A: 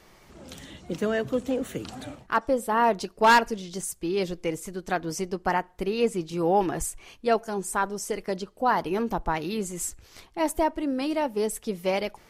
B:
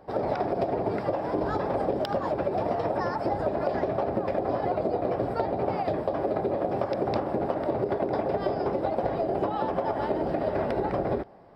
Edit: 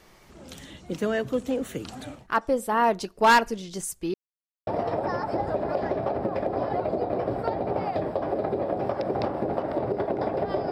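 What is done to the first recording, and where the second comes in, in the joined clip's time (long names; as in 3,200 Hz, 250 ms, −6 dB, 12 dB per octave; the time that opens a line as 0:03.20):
A
0:04.14–0:04.67: silence
0:04.67: continue with B from 0:02.59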